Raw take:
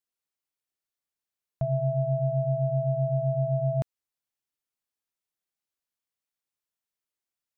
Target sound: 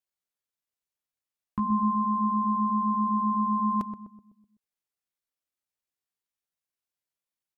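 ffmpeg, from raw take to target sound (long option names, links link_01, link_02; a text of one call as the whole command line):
ffmpeg -i in.wav -filter_complex "[0:a]asetrate=70004,aresample=44100,atempo=0.629961,asplit=2[link_01][link_02];[link_02]adelay=126,lowpass=frequency=830:poles=1,volume=-8dB,asplit=2[link_03][link_04];[link_04]adelay=126,lowpass=frequency=830:poles=1,volume=0.49,asplit=2[link_05][link_06];[link_06]adelay=126,lowpass=frequency=830:poles=1,volume=0.49,asplit=2[link_07][link_08];[link_08]adelay=126,lowpass=frequency=830:poles=1,volume=0.49,asplit=2[link_09][link_10];[link_10]adelay=126,lowpass=frequency=830:poles=1,volume=0.49,asplit=2[link_11][link_12];[link_12]adelay=126,lowpass=frequency=830:poles=1,volume=0.49[link_13];[link_01][link_03][link_05][link_07][link_09][link_11][link_13]amix=inputs=7:normalize=0" out.wav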